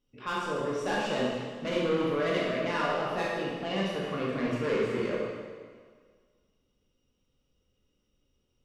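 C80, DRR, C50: 1.5 dB, −5.5 dB, −1.5 dB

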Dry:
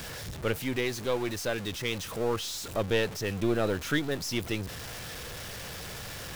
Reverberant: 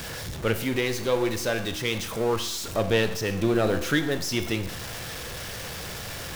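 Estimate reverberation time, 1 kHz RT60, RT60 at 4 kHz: 0.75 s, 0.75 s, 0.75 s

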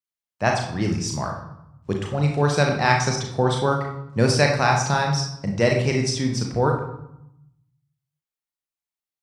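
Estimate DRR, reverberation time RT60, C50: 1.0 dB, 0.80 s, 5.0 dB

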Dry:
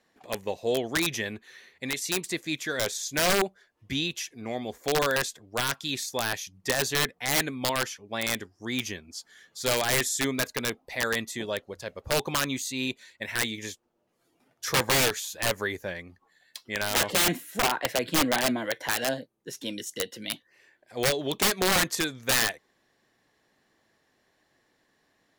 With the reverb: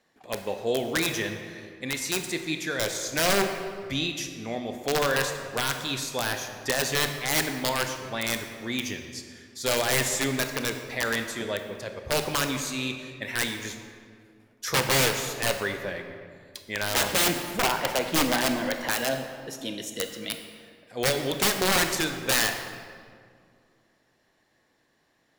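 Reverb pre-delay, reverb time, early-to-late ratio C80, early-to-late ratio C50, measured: 23 ms, 2.1 s, 8.0 dB, 6.5 dB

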